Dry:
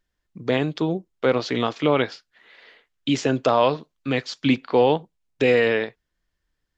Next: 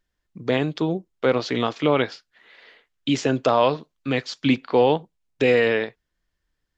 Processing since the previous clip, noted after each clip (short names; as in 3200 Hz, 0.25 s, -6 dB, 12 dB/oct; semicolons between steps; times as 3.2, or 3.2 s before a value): nothing audible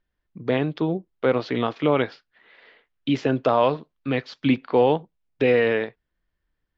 air absorption 220 m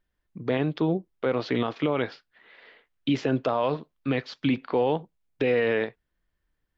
limiter -15 dBFS, peak gain reduction 7.5 dB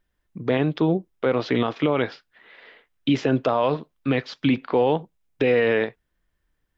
notch 4400 Hz, Q 22; gain +4 dB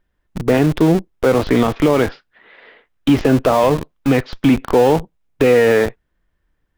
high shelf 3200 Hz -9 dB; in parallel at -6 dB: Schmitt trigger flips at -31 dBFS; on the sum: gain +6 dB